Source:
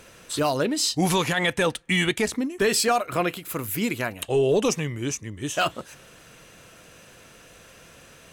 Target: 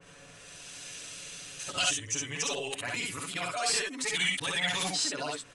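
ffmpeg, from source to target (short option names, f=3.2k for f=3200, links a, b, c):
-filter_complex "[0:a]areverse,aecho=1:1:7:0.92,bandreject=f=68.49:t=h:w=4,bandreject=f=136.98:t=h:w=4,bandreject=f=205.47:t=h:w=4,bandreject=f=273.96:t=h:w=4,bandreject=f=342.45:t=h:w=4,bandreject=f=410.94:t=h:w=4,bandreject=f=479.43:t=h:w=4,acrossover=split=720|2800[a][b][c];[a]acompressor=threshold=-34dB:ratio=10[d];[b]alimiter=limit=-23.5dB:level=0:latency=1:release=24[e];[c]dynaudnorm=f=150:g=11:m=15.5dB[f];[d][e][f]amix=inputs=3:normalize=0,atempo=1.5,asoftclip=type=tanh:threshold=-11dB,asplit=2[g][h];[h]aecho=0:1:56|67:0.631|0.668[i];[g][i]amix=inputs=2:normalize=0,aresample=22050,aresample=44100,adynamicequalizer=threshold=0.02:dfrequency=2800:dqfactor=0.7:tfrequency=2800:tqfactor=0.7:attack=5:release=100:ratio=0.375:range=3.5:mode=cutabove:tftype=highshelf,volume=-7.5dB"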